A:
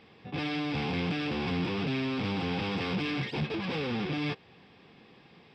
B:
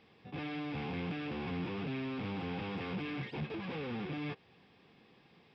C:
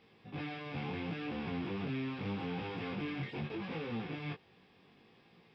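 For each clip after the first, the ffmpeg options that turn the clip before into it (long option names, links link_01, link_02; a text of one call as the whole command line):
ffmpeg -i in.wav -filter_complex "[0:a]acrossover=split=3200[link_01][link_02];[link_02]acompressor=threshold=-55dB:ratio=4:attack=1:release=60[link_03];[link_01][link_03]amix=inputs=2:normalize=0,volume=-7dB" out.wav
ffmpeg -i in.wav -af "flanger=delay=17.5:depth=4.6:speed=0.75,volume=2.5dB" out.wav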